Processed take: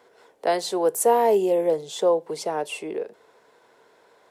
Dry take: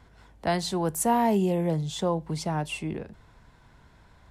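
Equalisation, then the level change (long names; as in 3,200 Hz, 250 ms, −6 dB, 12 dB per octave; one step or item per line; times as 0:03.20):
high-pass with resonance 450 Hz, resonance Q 4.1
high-shelf EQ 7,400 Hz +5 dB
0.0 dB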